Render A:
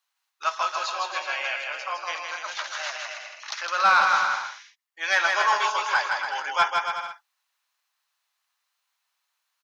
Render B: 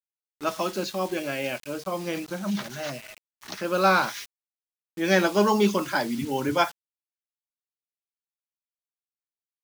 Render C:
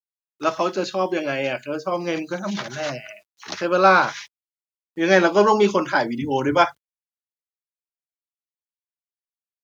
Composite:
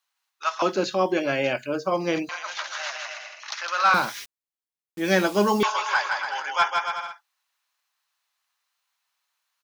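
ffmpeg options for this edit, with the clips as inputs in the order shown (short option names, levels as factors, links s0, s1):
-filter_complex "[0:a]asplit=3[s0][s1][s2];[s0]atrim=end=0.622[s3];[2:a]atrim=start=0.618:end=2.292[s4];[s1]atrim=start=2.288:end=3.942[s5];[1:a]atrim=start=3.938:end=5.632[s6];[s2]atrim=start=5.628[s7];[s3][s4]acrossfade=d=0.004:c1=hsin:c2=hsin[s8];[s8][s5]acrossfade=d=0.004:c1=hsin:c2=hsin[s9];[s9][s6]acrossfade=d=0.004:c1=hsin:c2=hsin[s10];[s10][s7]acrossfade=d=0.004:c1=hsin:c2=hsin"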